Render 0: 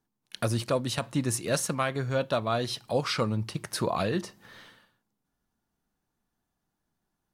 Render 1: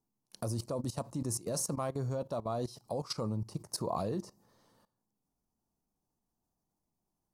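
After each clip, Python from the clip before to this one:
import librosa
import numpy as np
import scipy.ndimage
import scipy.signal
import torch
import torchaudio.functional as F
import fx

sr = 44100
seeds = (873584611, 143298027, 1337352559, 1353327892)

y = fx.band_shelf(x, sr, hz=2300.0, db=-15.5, octaves=1.7)
y = fx.level_steps(y, sr, step_db=17)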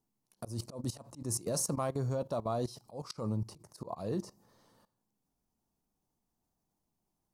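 y = fx.auto_swell(x, sr, attack_ms=175.0)
y = y * librosa.db_to_amplitude(1.5)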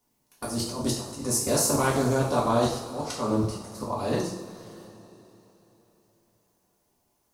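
y = fx.spec_clip(x, sr, under_db=14)
y = fx.rev_double_slope(y, sr, seeds[0], early_s=0.53, late_s=3.7, knee_db=-18, drr_db=-5.5)
y = fx.doppler_dist(y, sr, depth_ms=0.13)
y = y * librosa.db_to_amplitude(4.5)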